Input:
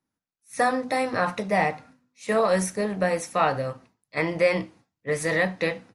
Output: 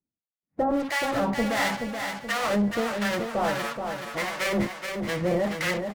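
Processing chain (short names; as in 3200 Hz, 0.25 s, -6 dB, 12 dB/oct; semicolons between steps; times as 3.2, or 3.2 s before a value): LPF 2300 Hz 24 dB/oct; low-pass opened by the level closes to 560 Hz, open at -22 dBFS; in parallel at -4 dB: fuzz box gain 40 dB, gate -46 dBFS; on the sum: formant-preserving pitch shift +1.5 st; harmonic tremolo 1.5 Hz, depth 100%, crossover 860 Hz; on a send: feedback echo 0.427 s, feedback 45%, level -6 dB; on the sum: gain -5.5 dB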